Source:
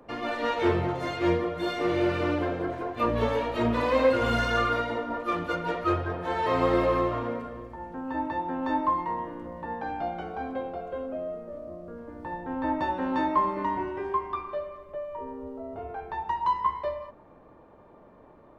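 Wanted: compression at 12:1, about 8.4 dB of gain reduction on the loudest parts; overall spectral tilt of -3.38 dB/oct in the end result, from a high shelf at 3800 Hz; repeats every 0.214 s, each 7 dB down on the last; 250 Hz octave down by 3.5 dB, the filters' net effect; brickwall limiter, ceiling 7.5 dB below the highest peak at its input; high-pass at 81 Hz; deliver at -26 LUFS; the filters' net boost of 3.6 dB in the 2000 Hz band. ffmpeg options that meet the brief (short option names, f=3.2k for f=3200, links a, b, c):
-af "highpass=81,equalizer=f=250:t=o:g=-5,equalizer=f=2k:t=o:g=4,highshelf=f=3.8k:g=4,acompressor=threshold=-27dB:ratio=12,alimiter=level_in=2dB:limit=-24dB:level=0:latency=1,volume=-2dB,aecho=1:1:214|428|642|856|1070:0.447|0.201|0.0905|0.0407|0.0183,volume=8.5dB"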